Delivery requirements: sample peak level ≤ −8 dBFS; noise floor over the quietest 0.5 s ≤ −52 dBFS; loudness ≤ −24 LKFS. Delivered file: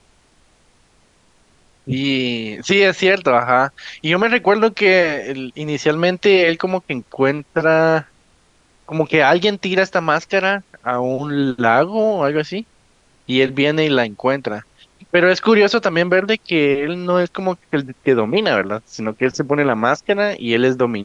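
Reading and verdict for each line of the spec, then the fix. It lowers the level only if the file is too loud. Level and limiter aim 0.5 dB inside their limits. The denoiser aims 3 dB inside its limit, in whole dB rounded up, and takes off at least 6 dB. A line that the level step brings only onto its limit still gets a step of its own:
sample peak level −2.5 dBFS: out of spec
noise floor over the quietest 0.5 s −56 dBFS: in spec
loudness −17.0 LKFS: out of spec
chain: level −7.5 dB

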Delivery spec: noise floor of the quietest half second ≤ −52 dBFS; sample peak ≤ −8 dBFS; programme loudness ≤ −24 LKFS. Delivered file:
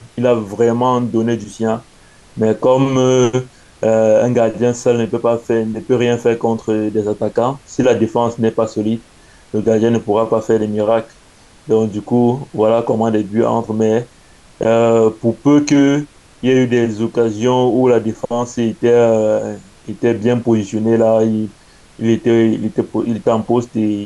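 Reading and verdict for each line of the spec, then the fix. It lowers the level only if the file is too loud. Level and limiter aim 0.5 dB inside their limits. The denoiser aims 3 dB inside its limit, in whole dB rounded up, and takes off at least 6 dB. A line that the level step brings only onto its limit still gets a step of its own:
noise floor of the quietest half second −46 dBFS: out of spec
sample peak −2.5 dBFS: out of spec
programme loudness −15.5 LKFS: out of spec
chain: level −9 dB

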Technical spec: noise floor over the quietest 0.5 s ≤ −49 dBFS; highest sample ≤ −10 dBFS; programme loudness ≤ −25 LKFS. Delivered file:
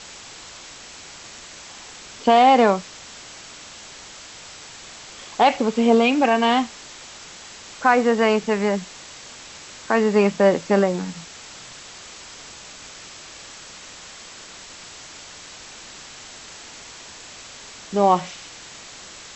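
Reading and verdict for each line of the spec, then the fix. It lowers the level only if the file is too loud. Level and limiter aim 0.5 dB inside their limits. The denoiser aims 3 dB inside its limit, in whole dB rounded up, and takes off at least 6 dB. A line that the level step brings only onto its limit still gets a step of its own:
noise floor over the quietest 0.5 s −41 dBFS: out of spec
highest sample −5.0 dBFS: out of spec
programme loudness −19.0 LKFS: out of spec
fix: broadband denoise 6 dB, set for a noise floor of −41 dBFS
level −6.5 dB

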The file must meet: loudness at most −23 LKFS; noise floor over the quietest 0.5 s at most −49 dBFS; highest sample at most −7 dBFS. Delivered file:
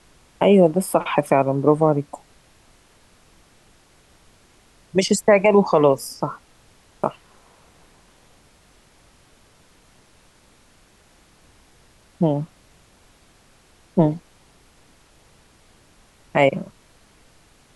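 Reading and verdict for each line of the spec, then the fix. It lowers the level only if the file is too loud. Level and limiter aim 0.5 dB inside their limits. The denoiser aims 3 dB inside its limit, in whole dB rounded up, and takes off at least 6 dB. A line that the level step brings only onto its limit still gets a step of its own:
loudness −19.5 LKFS: out of spec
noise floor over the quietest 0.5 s −55 dBFS: in spec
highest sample −4.5 dBFS: out of spec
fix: level −4 dB

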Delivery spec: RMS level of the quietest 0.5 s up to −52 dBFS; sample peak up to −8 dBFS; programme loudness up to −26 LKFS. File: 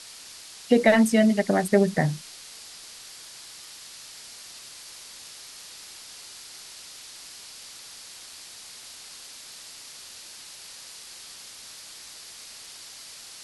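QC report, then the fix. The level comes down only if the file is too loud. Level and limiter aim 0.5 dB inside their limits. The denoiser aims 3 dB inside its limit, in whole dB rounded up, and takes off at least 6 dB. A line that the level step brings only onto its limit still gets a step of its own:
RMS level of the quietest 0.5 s −44 dBFS: out of spec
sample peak −5.5 dBFS: out of spec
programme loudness −21.5 LKFS: out of spec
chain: broadband denoise 6 dB, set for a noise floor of −44 dBFS
level −5 dB

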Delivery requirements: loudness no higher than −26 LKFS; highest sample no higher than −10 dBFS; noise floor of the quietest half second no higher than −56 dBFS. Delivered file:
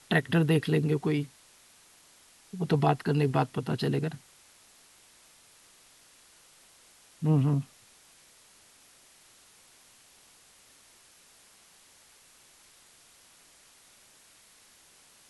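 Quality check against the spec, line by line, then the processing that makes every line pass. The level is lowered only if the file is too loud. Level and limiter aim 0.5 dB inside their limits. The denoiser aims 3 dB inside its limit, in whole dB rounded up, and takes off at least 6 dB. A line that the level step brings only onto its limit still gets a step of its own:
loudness −28.0 LKFS: in spec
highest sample −9.0 dBFS: out of spec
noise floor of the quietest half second −59 dBFS: in spec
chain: brickwall limiter −10.5 dBFS

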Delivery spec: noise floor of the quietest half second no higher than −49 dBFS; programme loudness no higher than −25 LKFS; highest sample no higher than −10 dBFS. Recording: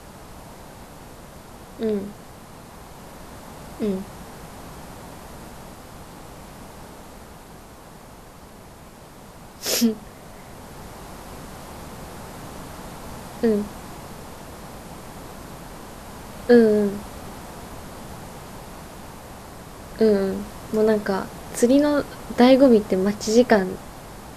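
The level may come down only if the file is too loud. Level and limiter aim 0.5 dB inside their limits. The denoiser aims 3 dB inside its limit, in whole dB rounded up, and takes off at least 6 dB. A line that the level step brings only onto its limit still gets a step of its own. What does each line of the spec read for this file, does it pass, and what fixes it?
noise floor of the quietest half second −44 dBFS: out of spec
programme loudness −20.5 LKFS: out of spec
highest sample −3.5 dBFS: out of spec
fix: broadband denoise 6 dB, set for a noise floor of −44 dBFS
level −5 dB
brickwall limiter −10.5 dBFS

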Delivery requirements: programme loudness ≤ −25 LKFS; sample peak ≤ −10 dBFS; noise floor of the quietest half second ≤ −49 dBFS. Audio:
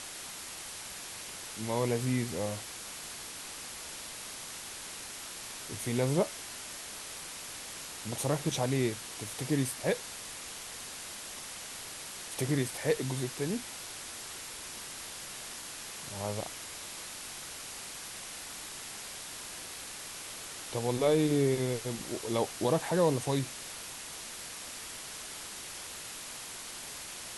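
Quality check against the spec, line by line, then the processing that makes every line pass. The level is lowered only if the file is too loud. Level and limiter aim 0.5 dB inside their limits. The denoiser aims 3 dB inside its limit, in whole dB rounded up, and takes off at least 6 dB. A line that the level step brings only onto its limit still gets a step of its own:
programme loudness −35.5 LKFS: in spec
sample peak −15.0 dBFS: in spec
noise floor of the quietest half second −43 dBFS: out of spec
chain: broadband denoise 9 dB, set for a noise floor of −43 dBFS

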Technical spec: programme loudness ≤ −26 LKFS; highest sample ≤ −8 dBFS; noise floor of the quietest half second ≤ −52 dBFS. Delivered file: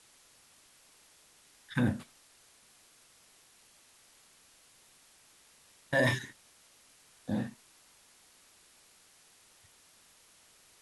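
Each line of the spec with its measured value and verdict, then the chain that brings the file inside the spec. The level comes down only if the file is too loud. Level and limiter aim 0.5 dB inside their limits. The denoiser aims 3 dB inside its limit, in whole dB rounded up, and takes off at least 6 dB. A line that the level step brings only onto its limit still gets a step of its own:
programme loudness −33.0 LKFS: in spec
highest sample −14.5 dBFS: in spec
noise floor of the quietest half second −62 dBFS: in spec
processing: no processing needed

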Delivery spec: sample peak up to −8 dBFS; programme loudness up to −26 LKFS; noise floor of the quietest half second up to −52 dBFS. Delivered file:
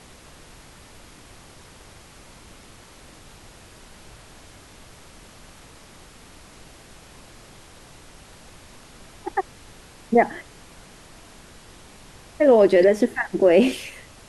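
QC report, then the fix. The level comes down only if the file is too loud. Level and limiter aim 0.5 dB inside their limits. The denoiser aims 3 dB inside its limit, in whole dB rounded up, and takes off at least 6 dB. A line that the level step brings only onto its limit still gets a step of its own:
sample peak −4.5 dBFS: out of spec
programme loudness −19.5 LKFS: out of spec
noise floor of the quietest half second −47 dBFS: out of spec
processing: level −7 dB

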